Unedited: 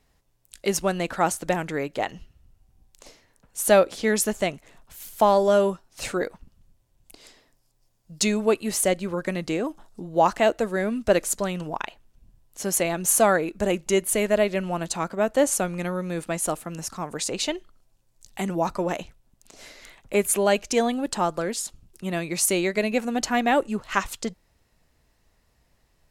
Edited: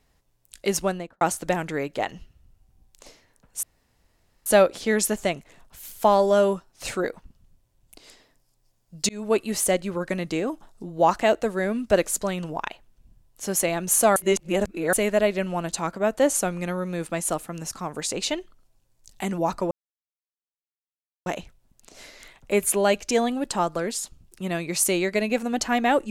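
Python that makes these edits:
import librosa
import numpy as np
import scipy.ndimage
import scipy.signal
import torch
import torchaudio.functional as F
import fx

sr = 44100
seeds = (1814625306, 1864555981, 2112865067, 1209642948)

y = fx.studio_fade_out(x, sr, start_s=0.81, length_s=0.4)
y = fx.edit(y, sr, fx.insert_room_tone(at_s=3.63, length_s=0.83),
    fx.fade_in_span(start_s=8.26, length_s=0.27),
    fx.reverse_span(start_s=13.33, length_s=0.77),
    fx.insert_silence(at_s=18.88, length_s=1.55), tone=tone)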